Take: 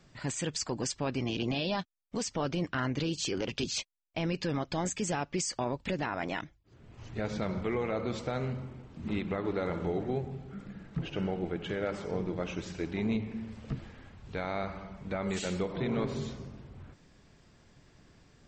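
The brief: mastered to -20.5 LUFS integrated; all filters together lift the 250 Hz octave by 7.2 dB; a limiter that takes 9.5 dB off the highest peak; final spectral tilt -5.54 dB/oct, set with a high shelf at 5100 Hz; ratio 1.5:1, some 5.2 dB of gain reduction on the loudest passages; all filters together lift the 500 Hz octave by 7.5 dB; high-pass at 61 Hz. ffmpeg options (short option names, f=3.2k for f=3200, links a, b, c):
-af "highpass=61,equalizer=f=250:t=o:g=7.5,equalizer=f=500:t=o:g=7,highshelf=f=5.1k:g=-3.5,acompressor=threshold=-35dB:ratio=1.5,volume=17dB,alimiter=limit=-10.5dB:level=0:latency=1"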